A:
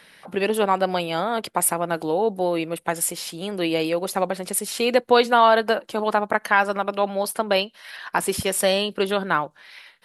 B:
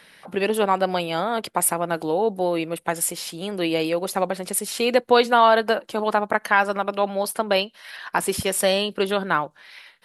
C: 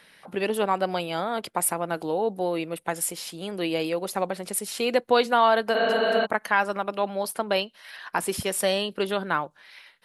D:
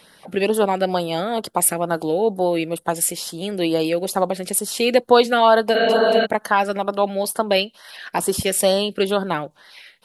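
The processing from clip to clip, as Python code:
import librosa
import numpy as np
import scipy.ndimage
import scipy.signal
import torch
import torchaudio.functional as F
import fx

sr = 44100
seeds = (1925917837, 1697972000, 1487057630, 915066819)

y1 = x
y2 = fx.spec_repair(y1, sr, seeds[0], start_s=5.78, length_s=0.45, low_hz=200.0, high_hz=4500.0, source='before')
y2 = y2 * librosa.db_to_amplitude(-4.0)
y3 = fx.filter_lfo_notch(y2, sr, shape='sine', hz=2.2, low_hz=950.0, high_hz=2500.0, q=1.2)
y3 = y3 * librosa.db_to_amplitude(7.5)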